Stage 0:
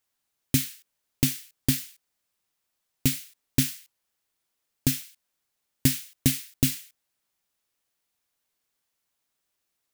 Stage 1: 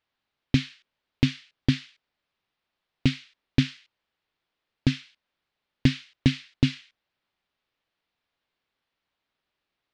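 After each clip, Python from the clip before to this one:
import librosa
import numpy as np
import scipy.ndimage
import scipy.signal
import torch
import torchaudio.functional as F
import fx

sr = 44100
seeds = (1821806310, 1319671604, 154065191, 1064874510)

y = scipy.signal.sosfilt(scipy.signal.butter(4, 4000.0, 'lowpass', fs=sr, output='sos'), x)
y = F.gain(torch.from_numpy(y), 3.0).numpy()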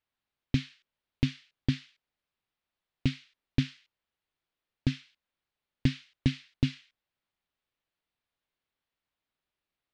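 y = fx.low_shelf(x, sr, hz=130.0, db=5.5)
y = F.gain(torch.from_numpy(y), -7.5).numpy()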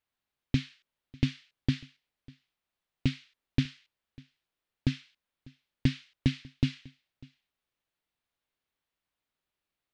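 y = x + 10.0 ** (-24.0 / 20.0) * np.pad(x, (int(597 * sr / 1000.0), 0))[:len(x)]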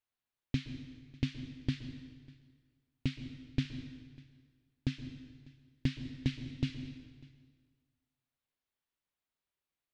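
y = fx.rev_plate(x, sr, seeds[0], rt60_s=1.6, hf_ratio=0.8, predelay_ms=110, drr_db=9.0)
y = F.gain(torch.from_numpy(y), -6.0).numpy()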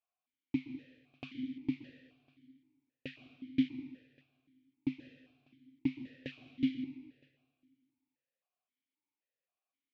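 y = fx.vowel_held(x, sr, hz=3.8)
y = F.gain(torch.from_numpy(y), 9.5).numpy()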